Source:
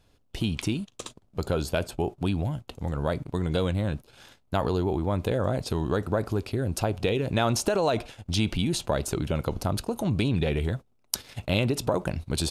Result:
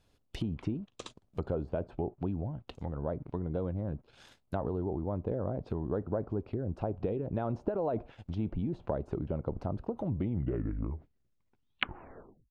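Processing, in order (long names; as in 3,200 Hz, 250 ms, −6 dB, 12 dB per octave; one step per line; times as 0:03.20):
turntable brake at the end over 2.55 s
treble cut that deepens with the level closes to 730 Hz, closed at −24.5 dBFS
harmonic and percussive parts rebalanced percussive +4 dB
level −8.5 dB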